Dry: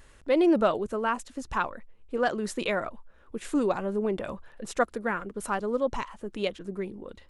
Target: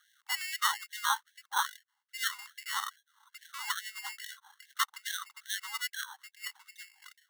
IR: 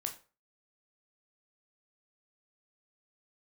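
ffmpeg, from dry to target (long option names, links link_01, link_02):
-af "highpass=frequency=390:width_type=q:width=0.5412,highpass=frequency=390:width_type=q:width=1.307,lowpass=frequency=2500:width_type=q:width=0.5176,lowpass=frequency=2500:width_type=q:width=0.7071,lowpass=frequency=2500:width_type=q:width=1.932,afreqshift=-92,acrusher=samples=18:mix=1:aa=0.000001,afftfilt=real='re*gte(b*sr/1024,760*pow(1600/760,0.5+0.5*sin(2*PI*2.4*pts/sr)))':imag='im*gte(b*sr/1024,760*pow(1600/760,0.5+0.5*sin(2*PI*2.4*pts/sr)))':win_size=1024:overlap=0.75"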